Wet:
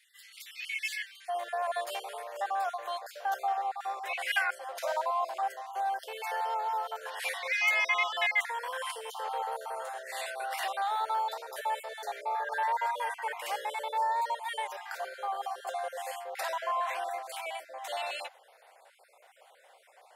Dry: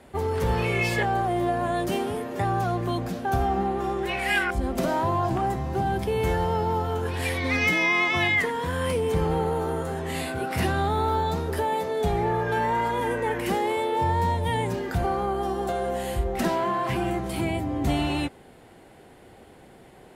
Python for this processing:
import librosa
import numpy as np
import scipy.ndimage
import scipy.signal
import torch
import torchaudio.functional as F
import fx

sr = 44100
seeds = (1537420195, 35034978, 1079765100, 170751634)

y = fx.spec_dropout(x, sr, seeds[0], share_pct=30)
y = fx.steep_highpass(y, sr, hz=fx.steps((0.0, 1900.0), (1.28, 550.0)), slope=48)
y = y * librosa.db_to_amplitude(-3.0)